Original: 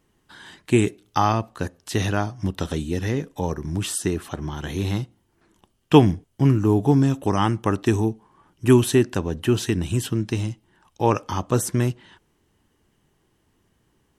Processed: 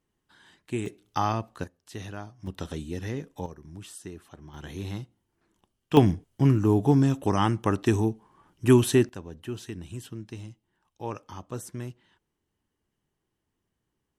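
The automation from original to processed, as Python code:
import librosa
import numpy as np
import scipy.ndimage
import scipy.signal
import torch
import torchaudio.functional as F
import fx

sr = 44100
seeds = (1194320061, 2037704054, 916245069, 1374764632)

y = fx.gain(x, sr, db=fx.steps((0.0, -13.0), (0.86, -6.5), (1.64, -15.5), (2.47, -8.5), (3.46, -17.0), (4.54, -10.0), (5.97, -3.0), (9.09, -15.0)))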